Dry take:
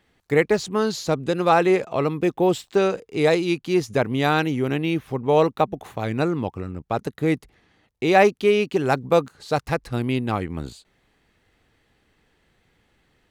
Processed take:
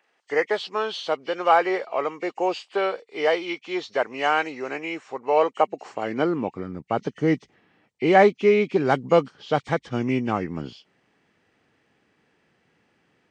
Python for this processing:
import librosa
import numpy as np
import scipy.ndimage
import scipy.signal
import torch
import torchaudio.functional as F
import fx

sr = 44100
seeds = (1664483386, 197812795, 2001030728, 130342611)

y = fx.freq_compress(x, sr, knee_hz=1800.0, ratio=1.5)
y = fx.filter_sweep_highpass(y, sr, from_hz=600.0, to_hz=160.0, start_s=5.34, end_s=6.76, q=0.9)